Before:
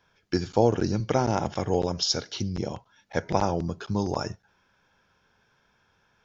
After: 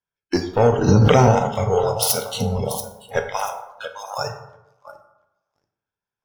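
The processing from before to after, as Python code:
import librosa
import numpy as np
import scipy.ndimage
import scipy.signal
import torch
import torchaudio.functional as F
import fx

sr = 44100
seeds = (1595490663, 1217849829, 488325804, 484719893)

y = fx.self_delay(x, sr, depth_ms=0.17, at=(1.95, 2.55))
y = fx.highpass(y, sr, hz=1200.0, slope=12, at=(3.28, 4.18))
y = fx.echo_feedback(y, sr, ms=685, feedback_pct=30, wet_db=-11.0)
y = fx.leveller(y, sr, passes=2)
y = fx.noise_reduce_blind(y, sr, reduce_db=23)
y = fx.rev_plate(y, sr, seeds[0], rt60_s=0.93, hf_ratio=0.5, predelay_ms=0, drr_db=5.0)
y = fx.env_flatten(y, sr, amount_pct=100, at=(0.87, 1.31), fade=0.02)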